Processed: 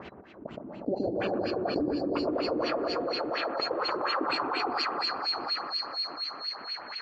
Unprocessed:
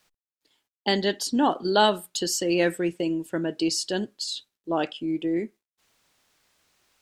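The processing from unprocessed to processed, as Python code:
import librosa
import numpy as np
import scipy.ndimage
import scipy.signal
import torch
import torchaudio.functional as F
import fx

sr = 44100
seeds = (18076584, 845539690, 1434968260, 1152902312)

y = fx.band_swap(x, sr, width_hz=4000)
y = fx.echo_feedback(y, sr, ms=682, feedback_pct=16, wet_db=-7.0)
y = fx.volume_shaper(y, sr, bpm=127, per_beat=1, depth_db=-4, release_ms=66.0, shape='slow start')
y = fx.transient(y, sr, attack_db=7, sustain_db=-7)
y = fx.filter_sweep_bandpass(y, sr, from_hz=240.0, to_hz=1800.0, start_s=1.2, end_s=4.81, q=0.99)
y = fx.rev_gated(y, sr, seeds[0], gate_ms=490, shape='rising', drr_db=2.5)
y = fx.filter_lfo_lowpass(y, sr, shape='sine', hz=4.2, low_hz=290.0, high_hz=3000.0, q=3.8)
y = fx.echo_alternate(y, sr, ms=119, hz=1200.0, feedback_pct=62, wet_db=-4.5)
y = fx.env_flatten(y, sr, amount_pct=70)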